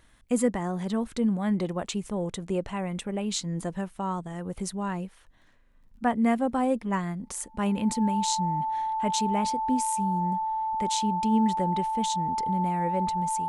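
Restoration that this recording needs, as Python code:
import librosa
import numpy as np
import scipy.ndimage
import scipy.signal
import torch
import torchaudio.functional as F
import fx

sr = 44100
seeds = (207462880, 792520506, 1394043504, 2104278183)

y = fx.fix_declick_ar(x, sr, threshold=6.5)
y = fx.notch(y, sr, hz=880.0, q=30.0)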